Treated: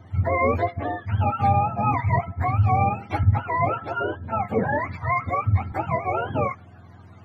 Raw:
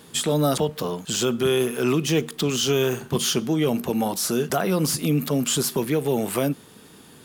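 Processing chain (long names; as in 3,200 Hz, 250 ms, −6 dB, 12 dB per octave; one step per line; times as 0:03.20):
frequency axis turned over on the octave scale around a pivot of 560 Hz
parametric band 2,300 Hz −5 dB 1.1 octaves
0:03.23–0:05.72: multiband upward and downward expander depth 40%
level +2 dB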